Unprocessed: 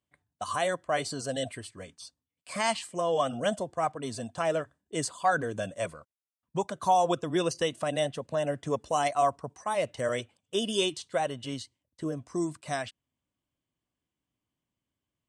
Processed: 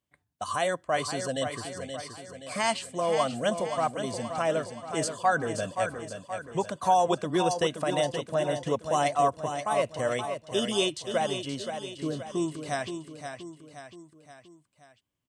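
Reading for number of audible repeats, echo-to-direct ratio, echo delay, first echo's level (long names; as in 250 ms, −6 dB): 4, −6.5 dB, 525 ms, −8.0 dB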